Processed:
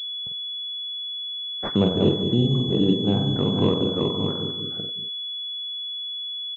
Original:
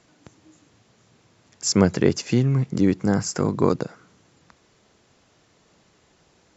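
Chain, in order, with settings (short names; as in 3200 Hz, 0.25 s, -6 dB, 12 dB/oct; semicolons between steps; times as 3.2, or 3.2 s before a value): reverse delay 0.481 s, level -4.5 dB; crackle 520/s -46 dBFS; doubler 49 ms -6 dB; split-band echo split 450 Hz, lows 0.191 s, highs 93 ms, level -8 dB; treble ducked by the level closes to 990 Hz, closed at -16.5 dBFS; in parallel at +1 dB: compressor, threshold -26 dBFS, peak gain reduction 14.5 dB; on the sum: spectral noise reduction 24 dB; gate -44 dBFS, range -13 dB; pulse-width modulation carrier 3400 Hz; gain -5 dB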